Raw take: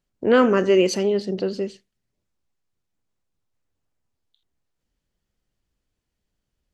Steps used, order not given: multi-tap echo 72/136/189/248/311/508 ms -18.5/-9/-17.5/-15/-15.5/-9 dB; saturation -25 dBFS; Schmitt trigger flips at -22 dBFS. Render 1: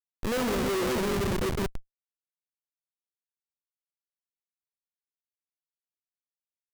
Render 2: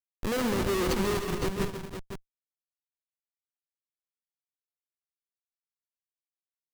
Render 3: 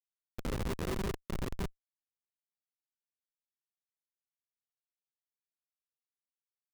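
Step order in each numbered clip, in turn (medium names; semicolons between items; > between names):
multi-tap echo > Schmitt trigger > saturation; Schmitt trigger > saturation > multi-tap echo; saturation > multi-tap echo > Schmitt trigger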